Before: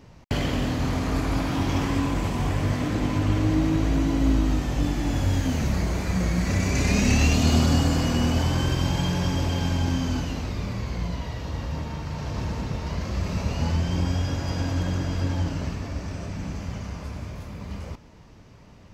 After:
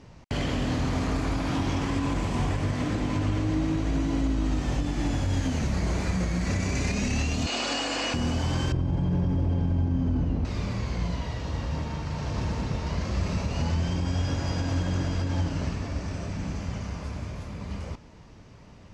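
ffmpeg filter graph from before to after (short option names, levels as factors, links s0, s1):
-filter_complex "[0:a]asettb=1/sr,asplit=3[s0][s1][s2];[s0]atrim=end=7.464[s3];[s1]atrim=start=7.46:end=8.14,asetpts=PTS-STARTPTS,afade=t=in:d=0.004:c=qsin,afade=t=out:st=0.676:d=0.004:c=qsin,highpass=f=340:w=0.5412,highpass=f=340:w=1.3066,equalizer=f=390:t=q:w=4:g=-5,equalizer=f=1800:t=q:w=4:g=3,equalizer=f=2600:t=q:w=4:g=8,equalizer=f=4100:t=q:w=4:g=3,lowpass=f=8900:w=0.5412,lowpass=f=8900:w=1.3066,aeval=exprs='val(0)+0.00562*(sin(2*PI*50*n/s)+sin(2*PI*2*50*n/s)/2+sin(2*PI*3*50*n/s)/3+sin(2*PI*4*50*n/s)/4+sin(2*PI*5*50*n/s)/5)':c=same[s4];[s2]atrim=start=8.136[s5];[s3][s4]acrossfade=d=0.004:c1=hsin:c2=qsin[s6];[s6][s5]acrossfade=d=0.004:c1=qsin:c2=hsin,asettb=1/sr,asplit=3[s7][s8][s9];[s7]atrim=end=8.724[s10];[s8]atrim=start=8.72:end=10.45,asetpts=PTS-STARTPTS,afade=t=in:d=0.004:c=qsin,afade=t=out:st=1.726:d=0.004:c=qsin,lowpass=f=2000:p=1,tiltshelf=f=730:g=8[s11];[s9]atrim=start=10.446[s12];[s10][s11]acrossfade=d=0.004:c1=hsin:c2=qsin[s13];[s13][s12]acrossfade=d=0.004:c1=qsin:c2=hsin,lowpass=f=10000:w=0.5412,lowpass=f=10000:w=1.3066,alimiter=limit=0.126:level=0:latency=1:release=113"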